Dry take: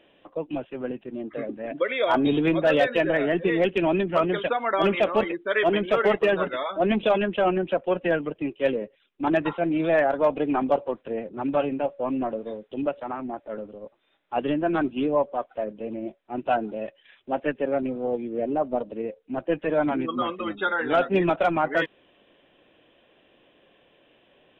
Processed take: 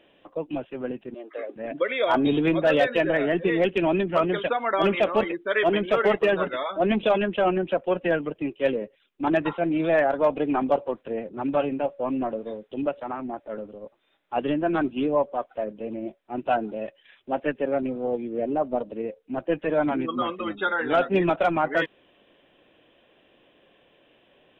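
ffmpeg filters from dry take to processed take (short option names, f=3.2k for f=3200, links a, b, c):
-filter_complex "[0:a]asettb=1/sr,asplit=3[a][b][c];[a]atrim=end=1.144[d];[b]atrim=start=1.14:end=1.56,asetpts=PTS-STARTPTS,afade=t=in:d=0.004:c=qsin,afade=t=out:st=0.416:d=0.004:c=qsin,highpass=f=410:w=0.5412,highpass=f=410:w=1.3066[e];[c]atrim=start=1.556[f];[d][e]acrossfade=d=0.004:c1=hsin:c2=qsin[g];[g][f]acrossfade=d=0.004:c1=qsin:c2=hsin"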